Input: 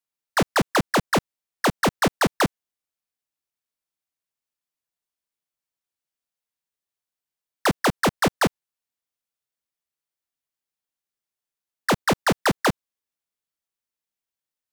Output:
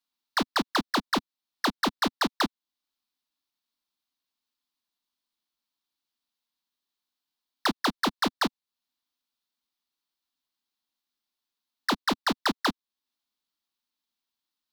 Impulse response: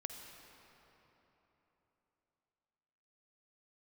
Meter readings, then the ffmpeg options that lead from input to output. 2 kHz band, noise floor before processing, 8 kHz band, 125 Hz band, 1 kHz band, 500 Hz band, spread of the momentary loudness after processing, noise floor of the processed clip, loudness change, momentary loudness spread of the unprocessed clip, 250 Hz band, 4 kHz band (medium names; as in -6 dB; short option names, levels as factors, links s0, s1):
-5.5 dB, under -85 dBFS, -8.5 dB, -14.0 dB, -4.5 dB, -10.5 dB, 4 LU, under -85 dBFS, -5.0 dB, 4 LU, -5.0 dB, -0.5 dB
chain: -af "equalizer=f=125:t=o:w=1:g=-11,equalizer=f=250:t=o:w=1:g=11,equalizer=f=500:t=o:w=1:g=-7,equalizer=f=1000:t=o:w=1:g=6,equalizer=f=2000:t=o:w=1:g=-3,equalizer=f=4000:t=o:w=1:g=11,equalizer=f=8000:t=o:w=1:g=-5,alimiter=limit=0.141:level=0:latency=1:release=415"